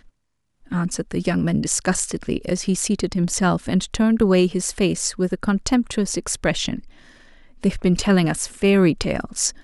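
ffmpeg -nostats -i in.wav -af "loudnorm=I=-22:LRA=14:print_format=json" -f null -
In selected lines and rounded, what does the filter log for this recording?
"input_i" : "-20.7",
"input_tp" : "-2.2",
"input_lra" : "2.8",
"input_thresh" : "-31.3",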